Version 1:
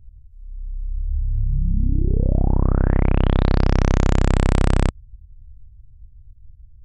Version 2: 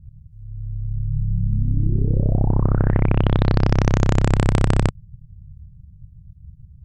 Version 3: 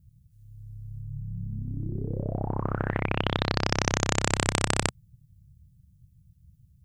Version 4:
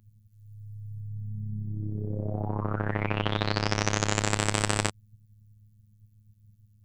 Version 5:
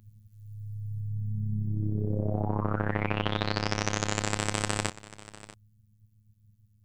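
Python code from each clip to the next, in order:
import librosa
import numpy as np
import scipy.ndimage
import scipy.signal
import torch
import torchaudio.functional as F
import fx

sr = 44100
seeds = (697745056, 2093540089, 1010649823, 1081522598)

y1 = fx.dynamic_eq(x, sr, hz=160.0, q=1.4, threshold_db=-34.0, ratio=4.0, max_db=-3)
y1 = y1 * np.sin(2.0 * np.pi * 72.0 * np.arange(len(y1)) / sr)
y1 = y1 * librosa.db_to_amplitude(3.0)
y2 = fx.tilt_eq(y1, sr, slope=3.5)
y2 = y2 * librosa.db_to_amplitude(-1.5)
y3 = fx.robotise(y2, sr, hz=105.0)
y3 = y3 * librosa.db_to_amplitude(1.0)
y4 = fx.rider(y3, sr, range_db=4, speed_s=0.5)
y4 = y4 + 10.0 ** (-17.5 / 20.0) * np.pad(y4, (int(642 * sr / 1000.0), 0))[:len(y4)]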